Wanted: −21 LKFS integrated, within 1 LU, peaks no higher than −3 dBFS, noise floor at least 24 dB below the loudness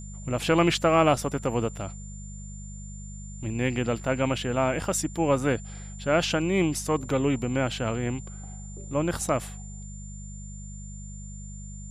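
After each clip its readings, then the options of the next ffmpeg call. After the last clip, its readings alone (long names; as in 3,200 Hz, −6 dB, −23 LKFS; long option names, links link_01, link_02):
mains hum 50 Hz; hum harmonics up to 200 Hz; level of the hum −37 dBFS; interfering tone 7,200 Hz; level of the tone −46 dBFS; integrated loudness −26.5 LKFS; sample peak −7.5 dBFS; target loudness −21.0 LKFS
→ -af "bandreject=frequency=50:width_type=h:width=4,bandreject=frequency=100:width_type=h:width=4,bandreject=frequency=150:width_type=h:width=4,bandreject=frequency=200:width_type=h:width=4"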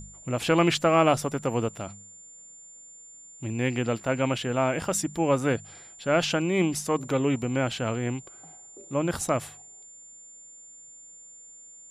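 mains hum none found; interfering tone 7,200 Hz; level of the tone −46 dBFS
→ -af "bandreject=frequency=7200:width=30"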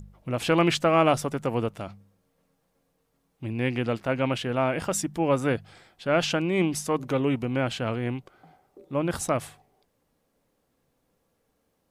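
interfering tone none found; integrated loudness −26.5 LKFS; sample peak −7.5 dBFS; target loudness −21.0 LKFS
→ -af "volume=5.5dB,alimiter=limit=-3dB:level=0:latency=1"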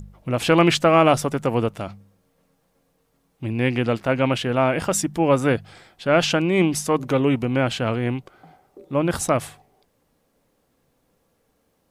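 integrated loudness −21.0 LKFS; sample peak −3.0 dBFS; background noise floor −68 dBFS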